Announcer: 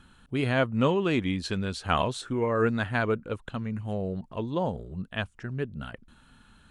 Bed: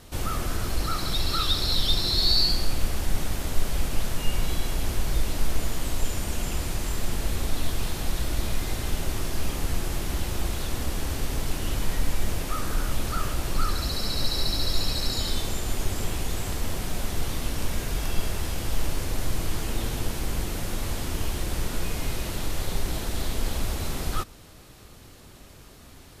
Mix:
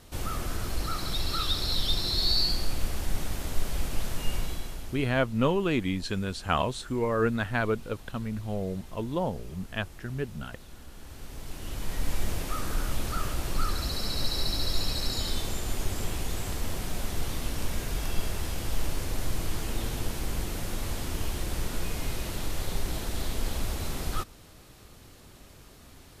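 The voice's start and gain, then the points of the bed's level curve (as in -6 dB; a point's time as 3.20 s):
4.60 s, -1.0 dB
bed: 4.35 s -4 dB
5.21 s -19 dB
10.90 s -19 dB
12.14 s -3 dB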